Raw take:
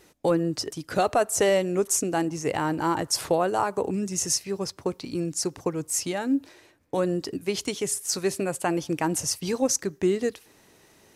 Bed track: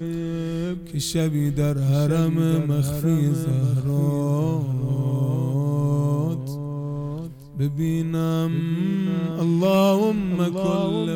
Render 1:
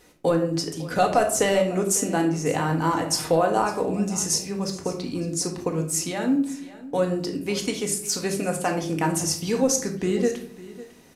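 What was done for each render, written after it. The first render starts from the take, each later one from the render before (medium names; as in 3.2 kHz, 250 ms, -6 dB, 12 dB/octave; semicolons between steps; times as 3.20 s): delay 552 ms -18 dB; simulated room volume 680 m³, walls furnished, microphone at 1.9 m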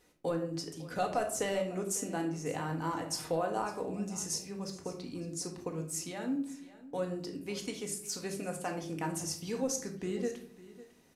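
trim -12 dB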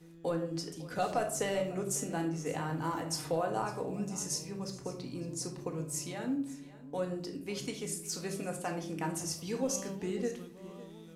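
add bed track -27.5 dB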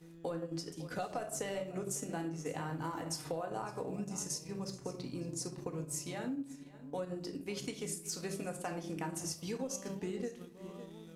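transient shaper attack 0 dB, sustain -6 dB; compression, threshold -35 dBFS, peak gain reduction 9 dB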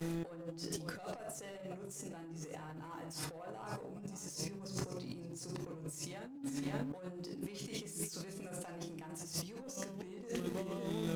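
waveshaping leveller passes 2; compressor with a negative ratio -45 dBFS, ratio -1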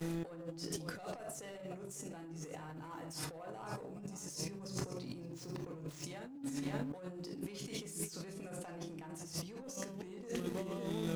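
5.18–6.04 s: median filter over 5 samples; 8.05–9.64 s: treble shelf 4.8 kHz -4.5 dB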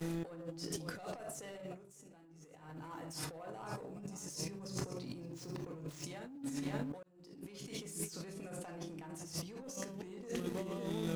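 1.69–2.75 s: dip -12 dB, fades 0.15 s; 7.03–7.89 s: fade in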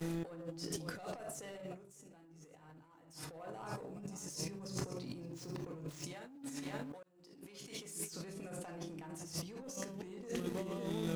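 2.46–3.45 s: dip -16.5 dB, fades 0.39 s; 6.13–8.11 s: bass shelf 320 Hz -8.5 dB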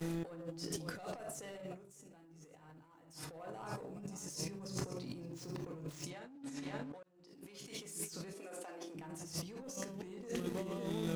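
6.10–7.28 s: distance through air 52 m; 8.33–8.95 s: high-pass 290 Hz 24 dB/octave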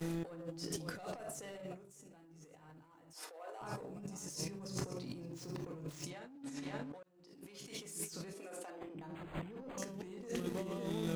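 3.13–3.61 s: inverse Chebyshev high-pass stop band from 160 Hz, stop band 50 dB; 8.70–9.78 s: decimation joined by straight lines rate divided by 8×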